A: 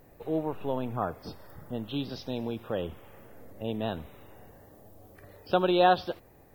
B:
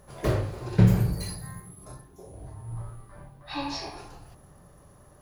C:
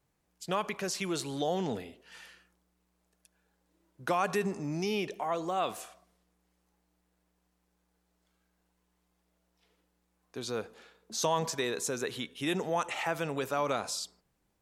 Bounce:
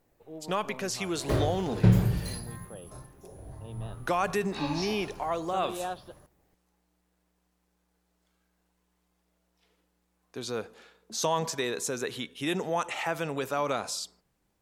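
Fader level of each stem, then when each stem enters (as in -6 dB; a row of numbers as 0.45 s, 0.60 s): -14.0 dB, -2.0 dB, +1.5 dB; 0.00 s, 1.05 s, 0.00 s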